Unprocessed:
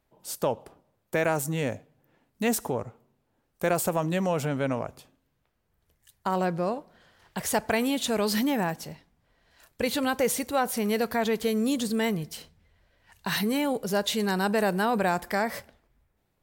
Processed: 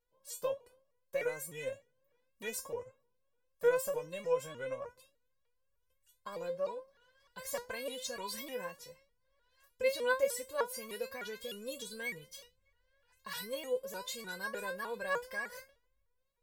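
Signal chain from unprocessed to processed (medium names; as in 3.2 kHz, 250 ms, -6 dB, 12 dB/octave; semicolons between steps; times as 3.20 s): feedback comb 520 Hz, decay 0.2 s, harmonics all, mix 100%; vibrato with a chosen wave saw up 3.3 Hz, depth 160 cents; trim +4.5 dB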